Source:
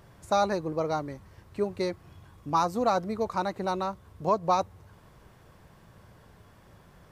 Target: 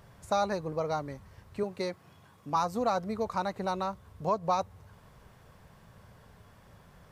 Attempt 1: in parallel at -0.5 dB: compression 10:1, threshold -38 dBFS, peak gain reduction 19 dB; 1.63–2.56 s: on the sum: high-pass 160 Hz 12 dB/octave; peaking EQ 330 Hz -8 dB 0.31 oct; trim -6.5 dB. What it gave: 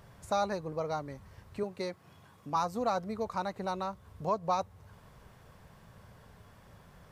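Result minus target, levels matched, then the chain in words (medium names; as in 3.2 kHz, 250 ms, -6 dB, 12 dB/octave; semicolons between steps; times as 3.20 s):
compression: peak gain reduction +10.5 dB
in parallel at -0.5 dB: compression 10:1, threshold -26.5 dBFS, peak gain reduction 8.5 dB; 1.63–2.56 s: on the sum: high-pass 160 Hz 12 dB/octave; peaking EQ 330 Hz -8 dB 0.31 oct; trim -6.5 dB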